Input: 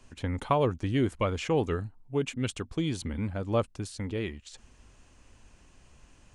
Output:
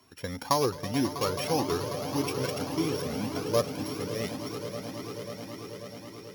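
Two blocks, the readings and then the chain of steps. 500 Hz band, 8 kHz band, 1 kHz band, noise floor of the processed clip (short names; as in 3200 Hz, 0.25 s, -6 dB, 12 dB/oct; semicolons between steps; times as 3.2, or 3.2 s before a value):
+1.0 dB, +7.0 dB, +2.0 dB, -46 dBFS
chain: sample sorter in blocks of 8 samples; HPF 170 Hz 12 dB/oct; on a send: swelling echo 0.108 s, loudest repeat 8, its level -14.5 dB; on the sum: cascading flanger rising 1.8 Hz; gain +5 dB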